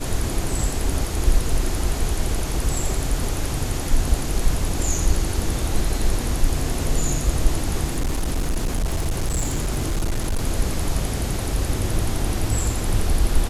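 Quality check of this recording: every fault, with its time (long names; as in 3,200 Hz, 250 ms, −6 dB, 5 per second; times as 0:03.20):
0:07.84–0:10.46: clipping −18 dBFS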